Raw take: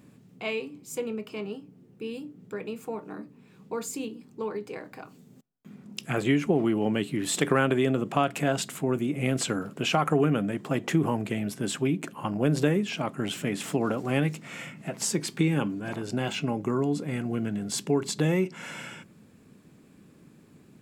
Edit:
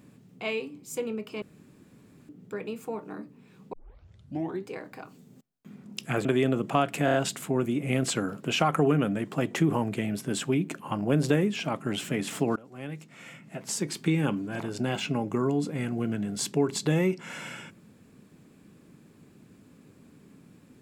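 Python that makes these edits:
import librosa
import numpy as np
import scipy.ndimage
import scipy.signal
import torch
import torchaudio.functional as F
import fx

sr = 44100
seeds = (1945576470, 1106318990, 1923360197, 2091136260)

y = fx.edit(x, sr, fx.room_tone_fill(start_s=1.42, length_s=0.87),
    fx.tape_start(start_s=3.73, length_s=0.94),
    fx.cut(start_s=6.25, length_s=1.42),
    fx.stutter(start_s=8.47, slice_s=0.03, count=4),
    fx.fade_in_from(start_s=13.89, length_s=1.75, floor_db=-23.5), tone=tone)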